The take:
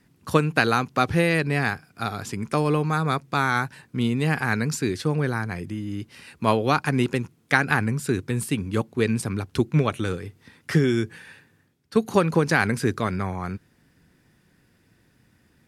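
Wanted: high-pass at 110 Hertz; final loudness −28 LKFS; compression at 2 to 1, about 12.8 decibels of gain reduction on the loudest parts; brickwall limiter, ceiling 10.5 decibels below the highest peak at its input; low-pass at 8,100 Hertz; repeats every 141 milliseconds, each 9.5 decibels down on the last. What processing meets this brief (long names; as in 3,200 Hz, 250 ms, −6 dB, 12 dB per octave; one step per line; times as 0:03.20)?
high-pass filter 110 Hz
low-pass filter 8,100 Hz
downward compressor 2 to 1, threshold −39 dBFS
brickwall limiter −25 dBFS
repeating echo 141 ms, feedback 33%, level −9.5 dB
level +9 dB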